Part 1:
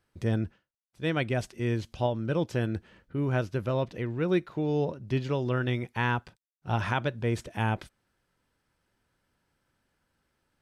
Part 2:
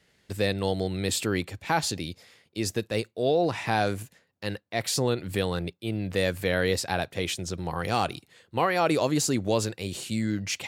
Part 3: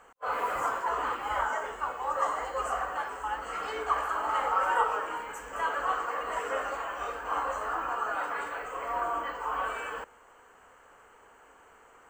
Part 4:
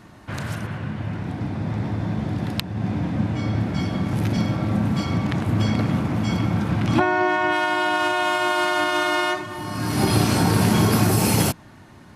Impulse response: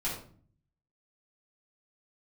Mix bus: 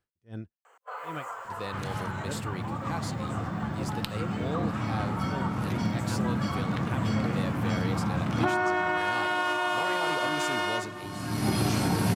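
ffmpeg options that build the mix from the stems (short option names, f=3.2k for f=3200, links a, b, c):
-filter_complex "[0:a]aeval=exprs='val(0)*pow(10,-37*(0.5-0.5*cos(2*PI*2.6*n/s))/20)':c=same,volume=-7.5dB[a];[1:a]adelay=1200,volume=-12dB[b];[2:a]highpass=f=420:w=0.5412,highpass=f=420:w=1.3066,acompressor=threshold=-37dB:ratio=2,adelay=650,volume=-2.5dB[c];[3:a]adelay=1450,volume=-8.5dB,asplit=2[d][e];[e]volume=-15.5dB[f];[4:a]atrim=start_sample=2205[g];[f][g]afir=irnorm=-1:irlink=0[h];[a][b][c][d][h]amix=inputs=5:normalize=0"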